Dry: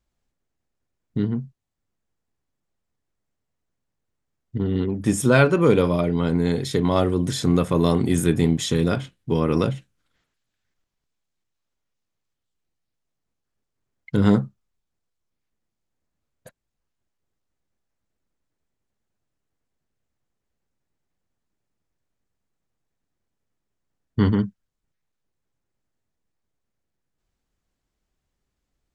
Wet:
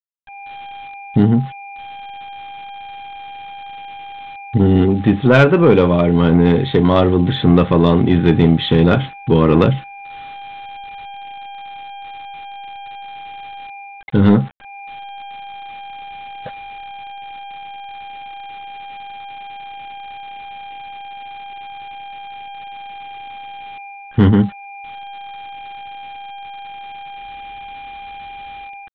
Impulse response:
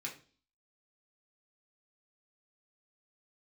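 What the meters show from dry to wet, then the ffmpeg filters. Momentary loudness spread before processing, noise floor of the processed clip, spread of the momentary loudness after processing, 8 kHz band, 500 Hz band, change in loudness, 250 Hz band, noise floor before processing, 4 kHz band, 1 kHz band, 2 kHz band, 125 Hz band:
11 LU, -36 dBFS, 20 LU, under -15 dB, +7.5 dB, +7.5 dB, +8.0 dB, -80 dBFS, +7.5 dB, +11.0 dB, +7.0 dB, +8.5 dB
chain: -af "aeval=exprs='val(0)+0.00708*sin(2*PI*800*n/s)':c=same,dynaudnorm=f=120:g=5:m=2.82,aresample=8000,aeval=exprs='val(0)*gte(abs(val(0)),0.0119)':c=same,aresample=44100,acontrast=48,volume=0.891"

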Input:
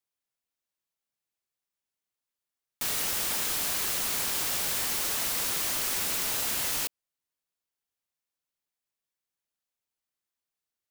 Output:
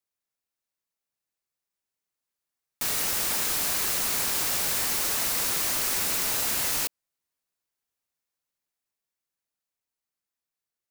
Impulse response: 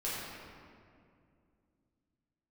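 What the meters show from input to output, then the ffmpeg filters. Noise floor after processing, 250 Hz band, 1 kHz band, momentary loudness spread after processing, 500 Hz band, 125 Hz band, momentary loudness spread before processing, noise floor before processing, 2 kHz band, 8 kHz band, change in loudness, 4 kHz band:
under -85 dBFS, +3.0 dB, +3.0 dB, 2 LU, +3.0 dB, +3.0 dB, 2 LU, under -85 dBFS, +2.5 dB, +3.0 dB, +3.0 dB, +2.0 dB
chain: -af "equalizer=f=3200:w=3.4:g=-3,dynaudnorm=f=260:g=17:m=1.41"

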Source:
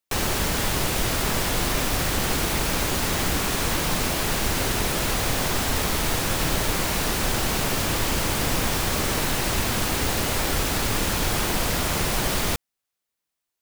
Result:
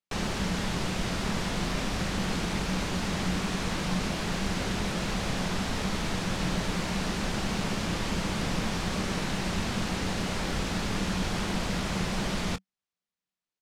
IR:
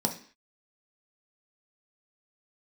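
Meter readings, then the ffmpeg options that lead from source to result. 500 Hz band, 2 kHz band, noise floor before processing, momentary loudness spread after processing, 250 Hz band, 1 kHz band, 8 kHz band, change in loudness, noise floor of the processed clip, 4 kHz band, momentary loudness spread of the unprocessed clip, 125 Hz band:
-6.5 dB, -7.0 dB, -84 dBFS, 1 LU, -1.0 dB, -7.0 dB, -12.0 dB, -7.0 dB, under -85 dBFS, -7.5 dB, 0 LU, -4.0 dB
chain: -filter_complex "[0:a]lowpass=6200,equalizer=f=190:t=o:w=0.33:g=13,asplit=2[s0][s1];[s1]adelay=23,volume=0.211[s2];[s0][s2]amix=inputs=2:normalize=0,volume=0.447"

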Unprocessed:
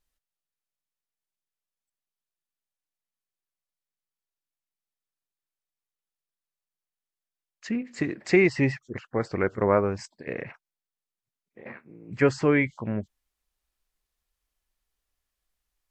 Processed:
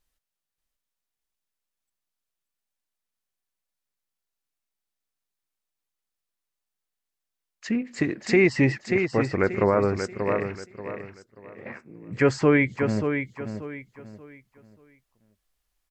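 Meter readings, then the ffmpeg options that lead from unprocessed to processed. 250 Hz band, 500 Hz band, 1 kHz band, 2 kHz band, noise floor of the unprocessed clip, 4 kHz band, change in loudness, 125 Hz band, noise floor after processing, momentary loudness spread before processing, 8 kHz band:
+3.0 dB, +2.5 dB, +2.0 dB, +2.5 dB, under -85 dBFS, +3.5 dB, +2.0 dB, +3.0 dB, -85 dBFS, 19 LU, +3.5 dB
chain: -filter_complex "[0:a]asplit=2[s0][s1];[s1]aecho=0:1:584|1168|1752|2336:0.398|0.119|0.0358|0.0107[s2];[s0][s2]amix=inputs=2:normalize=0,alimiter=level_in=3.76:limit=0.891:release=50:level=0:latency=1,volume=0.376"

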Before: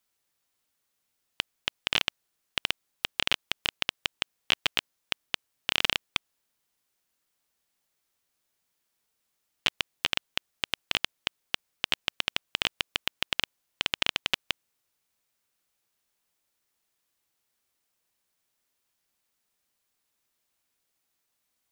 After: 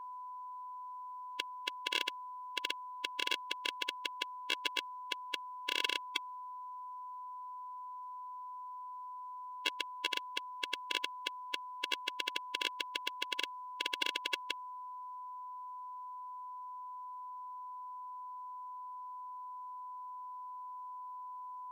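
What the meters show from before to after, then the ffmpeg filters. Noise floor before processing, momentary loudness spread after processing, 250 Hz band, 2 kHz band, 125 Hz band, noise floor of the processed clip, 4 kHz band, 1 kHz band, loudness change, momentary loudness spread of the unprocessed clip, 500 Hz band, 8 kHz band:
-79 dBFS, 11 LU, -8.5 dB, -6.5 dB, under -40 dB, -46 dBFS, -8.0 dB, +4.5 dB, -9.5 dB, 9 LU, -6.0 dB, -7.5 dB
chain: -af "aeval=exprs='val(0)+0.0112*sin(2*PI*1000*n/s)':c=same,afftfilt=real='re*eq(mod(floor(b*sr/1024/290),2),1)':imag='im*eq(mod(floor(b*sr/1024/290),2),1)':win_size=1024:overlap=0.75,volume=0.631"

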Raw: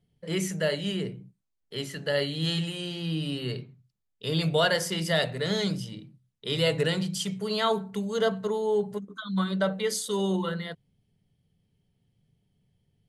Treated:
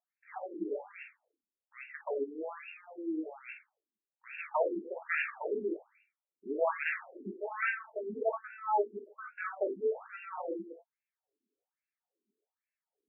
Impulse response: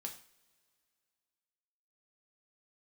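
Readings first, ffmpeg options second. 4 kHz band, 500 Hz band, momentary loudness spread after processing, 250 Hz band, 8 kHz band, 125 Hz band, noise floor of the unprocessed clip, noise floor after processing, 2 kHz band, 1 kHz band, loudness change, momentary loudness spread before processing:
under -25 dB, -7.0 dB, 15 LU, -12.0 dB, under -40 dB, under -30 dB, -78 dBFS, under -85 dBFS, -4.0 dB, -2.0 dB, -8.0 dB, 12 LU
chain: -filter_complex "[0:a]aeval=exprs='0.299*(cos(1*acos(clip(val(0)/0.299,-1,1)))-cos(1*PI/2))+0.119*(cos(6*acos(clip(val(0)/0.299,-1,1)))-cos(6*PI/2))':c=same[s0];[1:a]atrim=start_sample=2205,afade=t=out:st=0.15:d=0.01,atrim=end_sample=7056[s1];[s0][s1]afir=irnorm=-1:irlink=0,afftfilt=real='re*between(b*sr/1024,300*pow(2000/300,0.5+0.5*sin(2*PI*1.2*pts/sr))/1.41,300*pow(2000/300,0.5+0.5*sin(2*PI*1.2*pts/sr))*1.41)':imag='im*between(b*sr/1024,300*pow(2000/300,0.5+0.5*sin(2*PI*1.2*pts/sr))/1.41,300*pow(2000/300,0.5+0.5*sin(2*PI*1.2*pts/sr))*1.41)':win_size=1024:overlap=0.75"

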